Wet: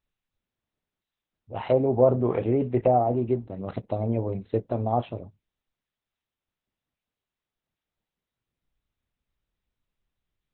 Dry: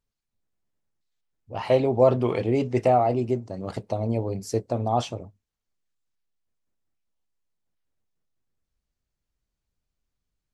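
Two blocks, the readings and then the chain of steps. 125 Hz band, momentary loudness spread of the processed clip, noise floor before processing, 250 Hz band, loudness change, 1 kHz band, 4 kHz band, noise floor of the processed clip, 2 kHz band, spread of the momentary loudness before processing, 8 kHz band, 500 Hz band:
-0.5 dB, 15 LU, -85 dBFS, 0.0 dB, -1.0 dB, -2.0 dB, under -10 dB, under -85 dBFS, -7.0 dB, 14 LU, under -30 dB, -1.0 dB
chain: low-pass that closes with the level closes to 870 Hz, closed at -17 dBFS; Opus 8 kbps 48 kHz

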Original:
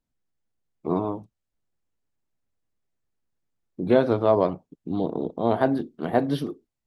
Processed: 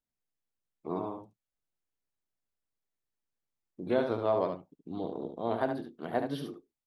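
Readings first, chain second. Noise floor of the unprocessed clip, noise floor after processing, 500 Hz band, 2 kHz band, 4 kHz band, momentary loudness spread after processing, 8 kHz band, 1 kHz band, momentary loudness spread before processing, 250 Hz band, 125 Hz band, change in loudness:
-83 dBFS, under -85 dBFS, -8.5 dB, -7.0 dB, -6.5 dB, 14 LU, no reading, -7.5 dB, 14 LU, -10.5 dB, -11.5 dB, -9.0 dB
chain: bass shelf 330 Hz -6.5 dB; on a send: delay 72 ms -6.5 dB; on the sum: trim -7.5 dB

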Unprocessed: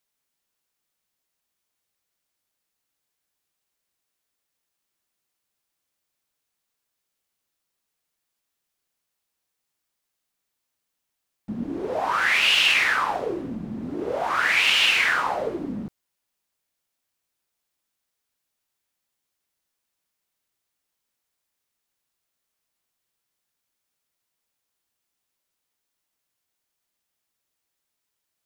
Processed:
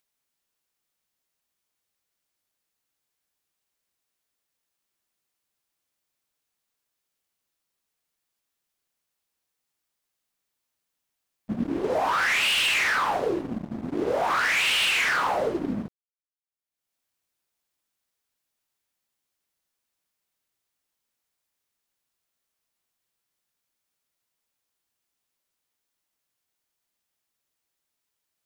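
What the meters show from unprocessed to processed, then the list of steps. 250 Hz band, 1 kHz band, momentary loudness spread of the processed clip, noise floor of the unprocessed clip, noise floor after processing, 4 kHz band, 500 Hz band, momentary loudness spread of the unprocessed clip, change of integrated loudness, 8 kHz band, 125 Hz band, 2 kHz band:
+1.0 dB, -0.5 dB, 13 LU, -81 dBFS, -82 dBFS, -4.0 dB, +1.5 dB, 17 LU, -3.0 dB, +1.0 dB, +0.5 dB, -3.0 dB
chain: expander -25 dBFS; upward compressor, threshold -40 dBFS; waveshaping leveller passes 3; compression, threshold -18 dBFS, peak gain reduction 7.5 dB; trim -4 dB

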